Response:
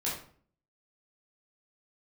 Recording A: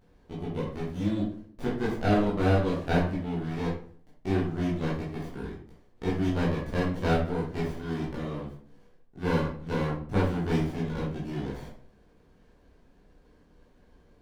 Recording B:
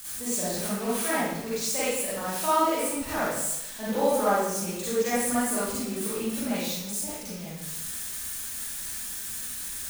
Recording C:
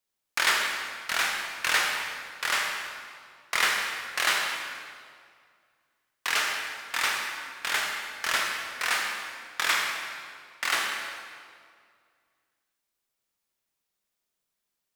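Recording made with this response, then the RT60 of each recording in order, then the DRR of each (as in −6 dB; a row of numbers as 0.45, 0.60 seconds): A; 0.50, 0.95, 2.1 seconds; −7.5, −10.5, 0.0 decibels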